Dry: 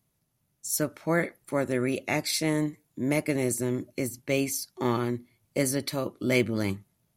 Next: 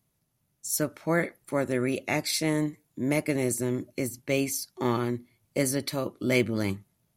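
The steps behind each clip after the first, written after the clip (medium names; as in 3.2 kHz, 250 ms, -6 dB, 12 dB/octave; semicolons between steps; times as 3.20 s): no audible change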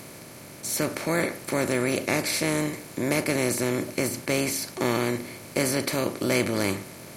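spectral levelling over time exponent 0.4; trim -3 dB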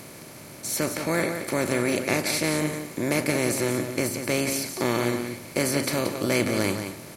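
delay 177 ms -8 dB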